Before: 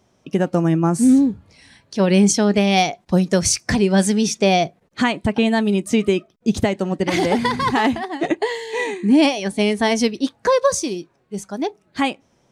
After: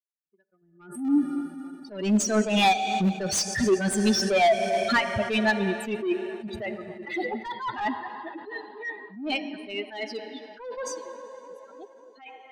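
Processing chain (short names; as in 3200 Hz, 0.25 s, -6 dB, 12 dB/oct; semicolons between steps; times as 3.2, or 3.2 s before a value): per-bin expansion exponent 3; Doppler pass-by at 3.59, 14 m/s, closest 7.9 m; in parallel at -10 dB: Schmitt trigger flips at -23 dBFS; on the sum: plate-style reverb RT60 3.5 s, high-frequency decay 0.9×, DRR 16 dB; compressor 4:1, threshold -34 dBFS, peak gain reduction 13.5 dB; overdrive pedal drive 24 dB, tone 3100 Hz, clips at -19 dBFS; dynamic EQ 300 Hz, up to +4 dB, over -40 dBFS, Q 1; on a send: tape echo 0.279 s, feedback 81%, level -20.5 dB, low-pass 1900 Hz; on the sum: attack slew limiter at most 100 dB/s; gain +7.5 dB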